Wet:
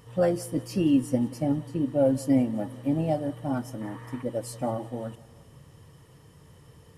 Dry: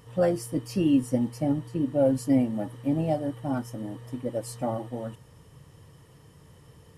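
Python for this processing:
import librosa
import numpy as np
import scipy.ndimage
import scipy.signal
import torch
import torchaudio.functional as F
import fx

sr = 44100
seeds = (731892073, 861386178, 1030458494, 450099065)

y = fx.band_shelf(x, sr, hz=1400.0, db=10.0, octaves=1.7, at=(3.81, 4.23))
y = fx.echo_feedback(y, sr, ms=181, feedback_pct=58, wet_db=-22.0)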